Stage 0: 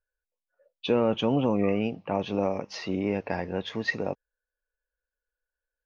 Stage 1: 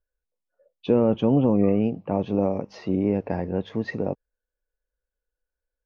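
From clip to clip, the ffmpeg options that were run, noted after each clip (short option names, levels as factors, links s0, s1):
-af "tiltshelf=f=970:g=8.5,volume=0.841"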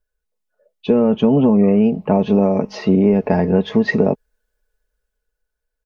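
-af "dynaudnorm=f=200:g=13:m=3.55,aecho=1:1:4.7:0.61,acompressor=threshold=0.2:ratio=4,volume=1.58"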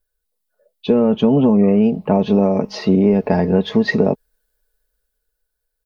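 -af "aexciter=amount=2.1:drive=3.5:freq=3600"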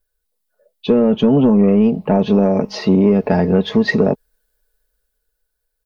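-af "asoftclip=type=tanh:threshold=0.631,volume=1.26"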